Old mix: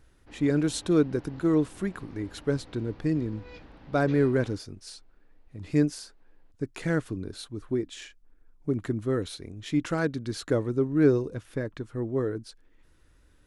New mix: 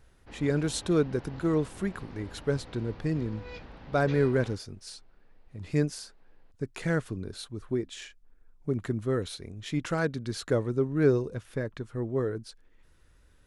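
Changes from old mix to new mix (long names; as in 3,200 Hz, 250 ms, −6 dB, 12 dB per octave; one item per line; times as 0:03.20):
background +4.0 dB
master: add parametric band 300 Hz −6.5 dB 0.33 octaves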